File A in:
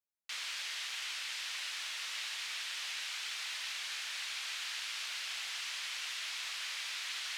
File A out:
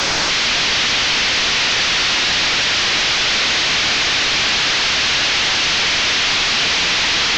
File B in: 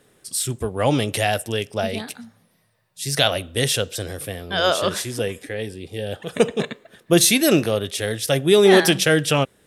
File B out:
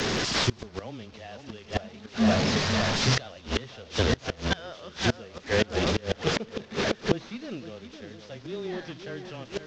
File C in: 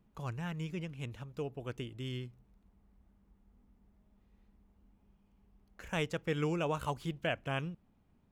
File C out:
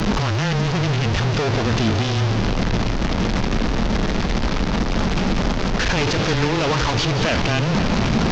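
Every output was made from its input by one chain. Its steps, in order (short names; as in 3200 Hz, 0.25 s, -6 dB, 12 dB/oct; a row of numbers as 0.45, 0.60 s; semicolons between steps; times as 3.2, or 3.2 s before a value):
delta modulation 32 kbps, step -25 dBFS; frequency shift -13 Hz; dynamic EQ 220 Hz, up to +8 dB, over -45 dBFS, Q 5.4; split-band echo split 2400 Hz, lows 0.51 s, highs 0.176 s, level -9 dB; flipped gate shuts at -15 dBFS, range -26 dB; normalise peaks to -6 dBFS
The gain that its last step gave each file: +14.5, +4.0, +11.0 dB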